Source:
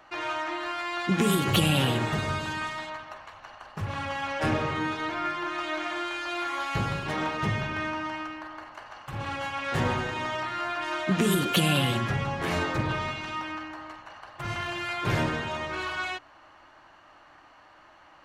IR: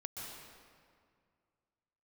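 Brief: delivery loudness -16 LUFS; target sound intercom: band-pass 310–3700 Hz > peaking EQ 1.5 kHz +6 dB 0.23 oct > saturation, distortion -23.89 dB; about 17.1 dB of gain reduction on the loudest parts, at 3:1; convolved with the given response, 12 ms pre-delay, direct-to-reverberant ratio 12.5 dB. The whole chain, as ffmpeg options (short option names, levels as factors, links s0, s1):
-filter_complex "[0:a]acompressor=threshold=0.00631:ratio=3,asplit=2[s0][s1];[1:a]atrim=start_sample=2205,adelay=12[s2];[s1][s2]afir=irnorm=-1:irlink=0,volume=0.266[s3];[s0][s3]amix=inputs=2:normalize=0,highpass=310,lowpass=3700,equalizer=f=1500:t=o:w=0.23:g=6,asoftclip=threshold=0.0237,volume=23.7"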